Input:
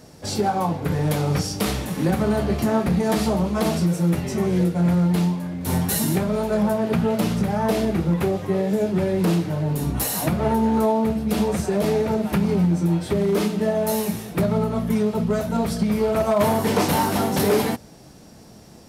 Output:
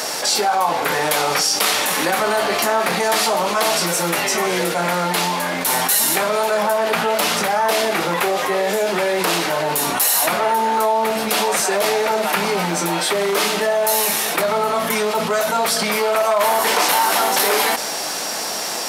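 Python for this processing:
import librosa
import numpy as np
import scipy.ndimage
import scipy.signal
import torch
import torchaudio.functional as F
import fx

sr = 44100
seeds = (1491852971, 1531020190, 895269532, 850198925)

y = scipy.signal.sosfilt(scipy.signal.butter(2, 850.0, 'highpass', fs=sr, output='sos'), x)
y = fx.env_flatten(y, sr, amount_pct=70)
y = y * 10.0 ** (6.5 / 20.0)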